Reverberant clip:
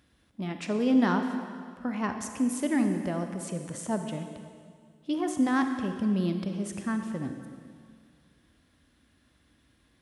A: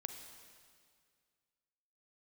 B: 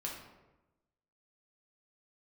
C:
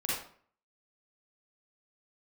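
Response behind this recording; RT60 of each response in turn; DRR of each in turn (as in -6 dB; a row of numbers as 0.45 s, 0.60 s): A; 2.0 s, 1.0 s, 0.50 s; 6.0 dB, -3.0 dB, -7.5 dB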